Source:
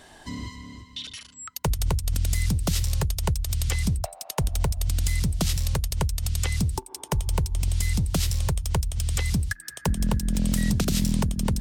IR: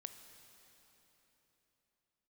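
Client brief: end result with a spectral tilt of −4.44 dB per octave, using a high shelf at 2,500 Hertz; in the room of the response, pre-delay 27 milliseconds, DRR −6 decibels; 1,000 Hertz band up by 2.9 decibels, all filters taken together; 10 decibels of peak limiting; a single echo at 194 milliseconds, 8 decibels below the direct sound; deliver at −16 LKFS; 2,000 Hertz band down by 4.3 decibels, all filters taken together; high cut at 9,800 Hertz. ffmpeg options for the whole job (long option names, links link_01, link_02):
-filter_complex "[0:a]lowpass=9800,equalizer=frequency=1000:width_type=o:gain=4.5,equalizer=frequency=2000:width_type=o:gain=-8.5,highshelf=frequency=2500:gain=4.5,alimiter=limit=-19.5dB:level=0:latency=1,aecho=1:1:194:0.398,asplit=2[link_01][link_02];[1:a]atrim=start_sample=2205,adelay=27[link_03];[link_02][link_03]afir=irnorm=-1:irlink=0,volume=11dB[link_04];[link_01][link_04]amix=inputs=2:normalize=0,volume=6.5dB"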